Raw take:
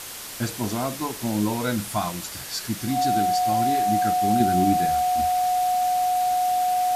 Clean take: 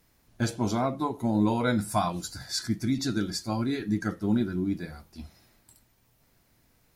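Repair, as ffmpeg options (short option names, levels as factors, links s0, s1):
-af "bandreject=f=730:w=30,afwtdn=0.018,asetnsamples=n=441:p=0,asendcmd='4.4 volume volume -6dB',volume=1"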